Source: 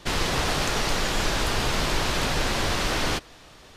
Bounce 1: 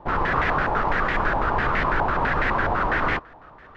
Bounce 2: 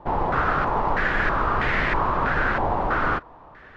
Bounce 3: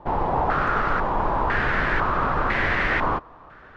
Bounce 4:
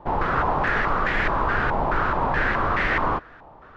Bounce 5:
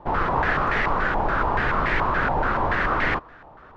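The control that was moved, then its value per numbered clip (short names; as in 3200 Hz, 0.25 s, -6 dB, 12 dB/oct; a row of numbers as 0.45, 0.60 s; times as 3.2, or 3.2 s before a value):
stepped low-pass, rate: 12, 3.1, 2, 4.7, 7 Hz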